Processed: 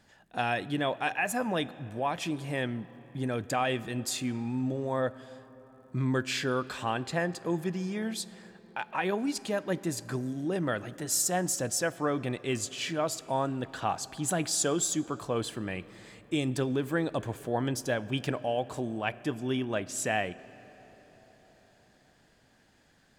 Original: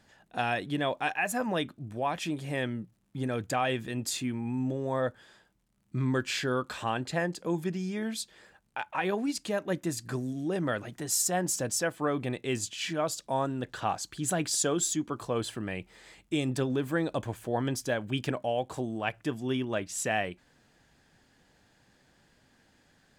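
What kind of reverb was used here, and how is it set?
comb and all-pass reverb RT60 5 s, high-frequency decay 0.5×, pre-delay 5 ms, DRR 17.5 dB

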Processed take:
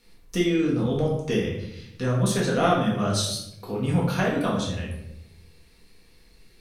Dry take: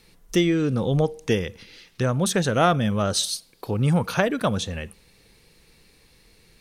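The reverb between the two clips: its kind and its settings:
rectangular room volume 210 cubic metres, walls mixed, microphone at 1.8 metres
level −8 dB

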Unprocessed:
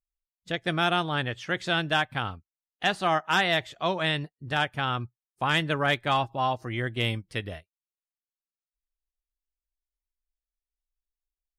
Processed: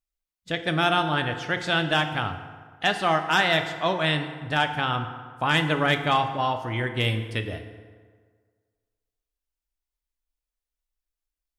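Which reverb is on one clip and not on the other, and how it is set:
feedback delay network reverb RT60 1.7 s, low-frequency decay 0.9×, high-frequency decay 0.6×, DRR 6.5 dB
level +2 dB

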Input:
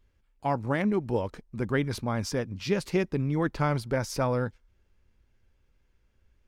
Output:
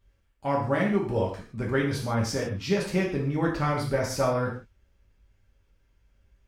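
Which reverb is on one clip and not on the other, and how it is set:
reverb whose tail is shaped and stops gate 190 ms falling, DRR −3.5 dB
level −2.5 dB

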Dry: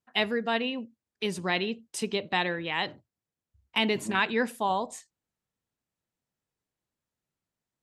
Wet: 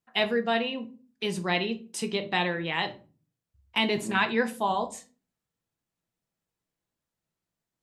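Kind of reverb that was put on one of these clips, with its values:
rectangular room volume 200 cubic metres, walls furnished, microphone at 0.74 metres

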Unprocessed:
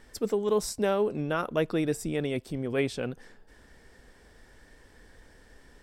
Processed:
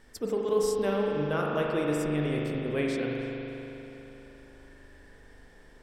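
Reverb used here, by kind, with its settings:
spring reverb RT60 3.5 s, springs 40 ms, chirp 65 ms, DRR −2.5 dB
level −3.5 dB

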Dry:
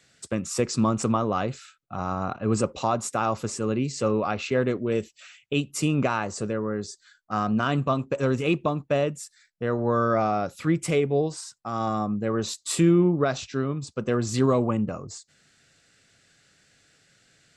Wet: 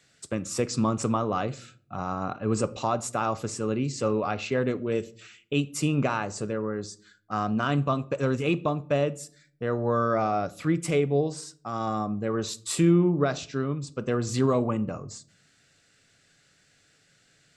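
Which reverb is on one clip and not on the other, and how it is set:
rectangular room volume 670 cubic metres, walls furnished, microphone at 0.37 metres
level −2 dB

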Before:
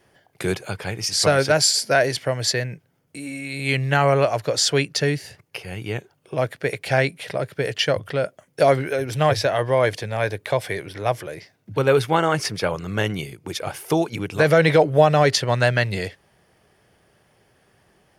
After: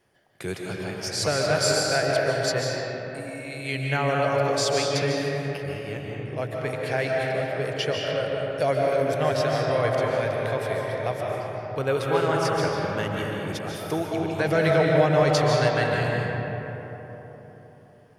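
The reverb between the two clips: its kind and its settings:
comb and all-pass reverb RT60 4.1 s, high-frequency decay 0.4×, pre-delay 105 ms, DRR −2.5 dB
level −8 dB

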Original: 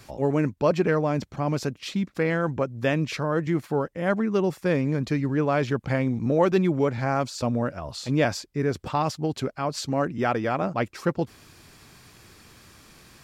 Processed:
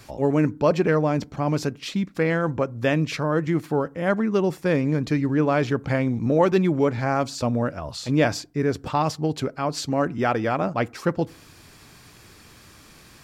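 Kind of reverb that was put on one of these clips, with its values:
feedback delay network reverb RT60 0.38 s, low-frequency decay 1.25×, high-frequency decay 0.45×, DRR 20 dB
level +2 dB

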